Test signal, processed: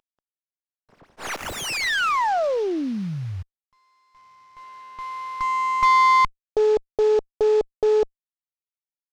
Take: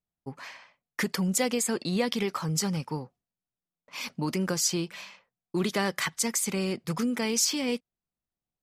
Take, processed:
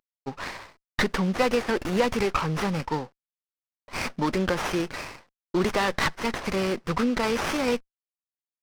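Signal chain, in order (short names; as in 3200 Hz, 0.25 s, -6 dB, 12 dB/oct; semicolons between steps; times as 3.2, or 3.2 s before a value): CVSD 32 kbps; overdrive pedal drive 12 dB, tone 3500 Hz, clips at -13 dBFS; running maximum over 9 samples; gain +4.5 dB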